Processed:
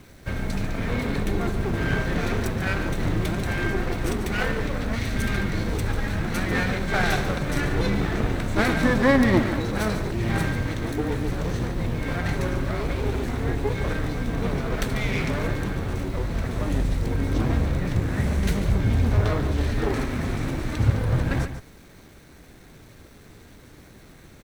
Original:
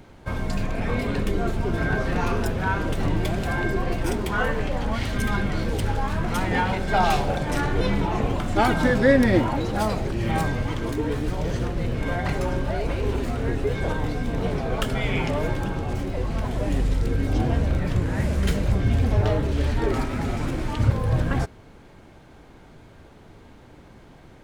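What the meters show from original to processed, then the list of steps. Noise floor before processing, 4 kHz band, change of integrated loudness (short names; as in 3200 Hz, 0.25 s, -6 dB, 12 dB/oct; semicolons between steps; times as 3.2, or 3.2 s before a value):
-48 dBFS, 0.0 dB, -0.5 dB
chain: minimum comb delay 0.5 ms; bit-crush 9-bit; on a send: echo 0.143 s -11 dB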